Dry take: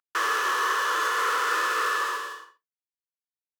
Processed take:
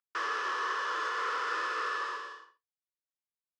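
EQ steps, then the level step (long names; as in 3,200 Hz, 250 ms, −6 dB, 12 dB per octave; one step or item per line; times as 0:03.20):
high-frequency loss of the air 120 metres
parametric band 5,100 Hz +6 dB 0.24 octaves
−7.0 dB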